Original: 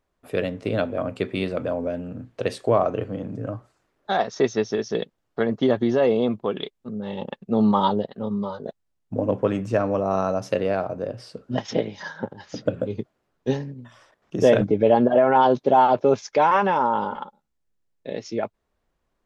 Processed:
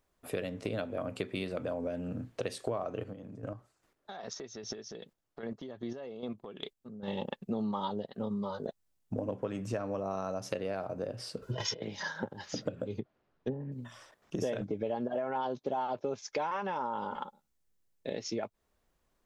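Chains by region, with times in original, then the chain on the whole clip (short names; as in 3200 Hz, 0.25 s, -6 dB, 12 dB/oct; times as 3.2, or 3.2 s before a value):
3.03–7.08 compressor 4:1, threshold -33 dBFS + chopper 2.5 Hz, depth 60%, duty 25%
11.42–11.82 notch 560 Hz, Q 8 + comb 2 ms, depth 92% + negative-ratio compressor -31 dBFS
12.99–13.72 treble ducked by the level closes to 610 Hz, closed at -19.5 dBFS + air absorption 190 m
whole clip: high shelf 5200 Hz +9 dB; compressor 6:1, threshold -30 dBFS; gain -2 dB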